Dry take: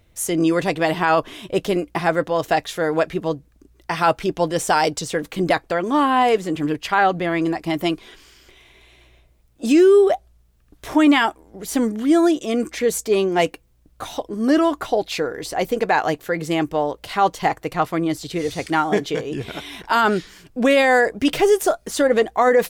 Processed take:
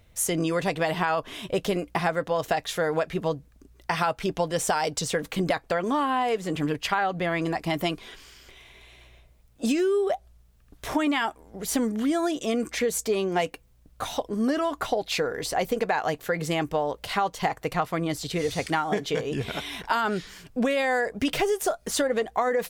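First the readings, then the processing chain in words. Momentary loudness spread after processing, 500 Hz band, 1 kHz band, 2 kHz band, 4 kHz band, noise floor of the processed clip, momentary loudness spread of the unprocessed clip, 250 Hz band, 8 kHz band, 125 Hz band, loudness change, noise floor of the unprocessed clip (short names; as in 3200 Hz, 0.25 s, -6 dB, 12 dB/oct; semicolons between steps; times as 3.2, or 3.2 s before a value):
6 LU, -7.5 dB, -7.0 dB, -6.5 dB, -4.0 dB, -57 dBFS, 10 LU, -8.0 dB, -2.0 dB, -3.0 dB, -7.0 dB, -57 dBFS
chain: bell 330 Hz -7.5 dB 0.32 oct; compressor 10:1, threshold -21 dBFS, peak gain reduction 10 dB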